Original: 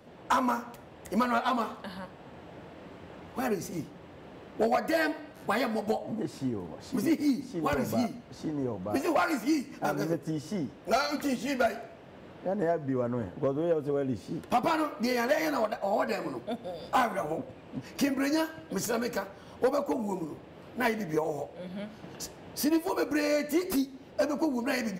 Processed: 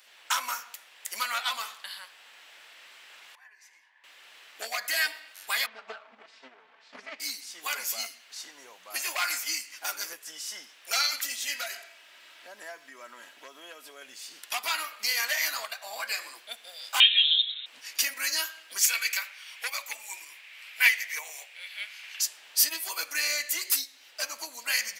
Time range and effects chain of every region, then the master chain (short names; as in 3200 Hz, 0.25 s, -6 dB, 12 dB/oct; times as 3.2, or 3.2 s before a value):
3.35–4.04 double band-pass 1300 Hz, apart 0.78 oct + compressor 3:1, threshold -55 dBFS
5.66–7.2 minimum comb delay 4.5 ms + transient shaper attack +10 dB, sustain +3 dB + tape spacing loss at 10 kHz 43 dB
11.22–14.02 resonant low shelf 130 Hz -8.5 dB, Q 3 + comb 3.1 ms, depth 45% + compressor 2:1, threshold -28 dBFS
17–17.66 comb 7.3 ms, depth 45% + inverted band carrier 3900 Hz
18.81–22.21 HPF 1000 Hz 6 dB/oct + bell 2300 Hz +11.5 dB 0.69 oct
whole clip: Chebyshev high-pass 2200 Hz, order 2; high shelf 4300 Hz +10 dB; gain +6 dB